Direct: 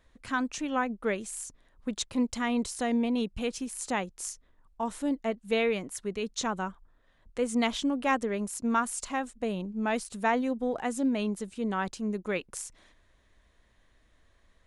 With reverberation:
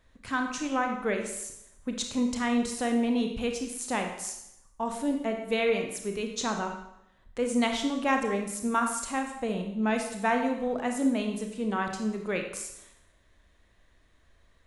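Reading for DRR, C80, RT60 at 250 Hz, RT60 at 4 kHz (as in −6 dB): 3.5 dB, 8.5 dB, 0.80 s, 0.75 s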